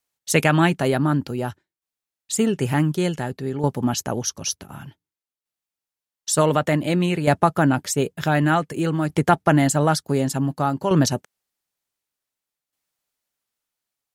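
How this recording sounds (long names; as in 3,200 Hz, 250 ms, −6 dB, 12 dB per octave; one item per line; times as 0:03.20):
tremolo saw down 0.55 Hz, depth 60%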